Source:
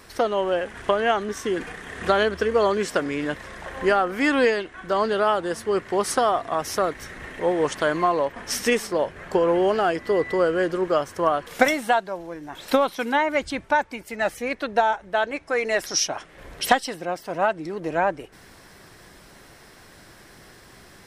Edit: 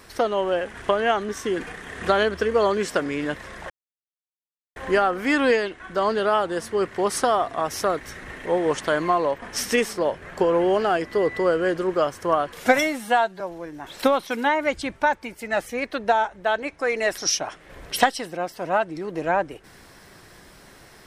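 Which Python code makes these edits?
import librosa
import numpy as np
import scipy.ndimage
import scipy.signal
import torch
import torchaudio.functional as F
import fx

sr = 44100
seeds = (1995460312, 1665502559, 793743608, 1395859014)

y = fx.edit(x, sr, fx.insert_silence(at_s=3.7, length_s=1.06),
    fx.stretch_span(start_s=11.58, length_s=0.51, factor=1.5), tone=tone)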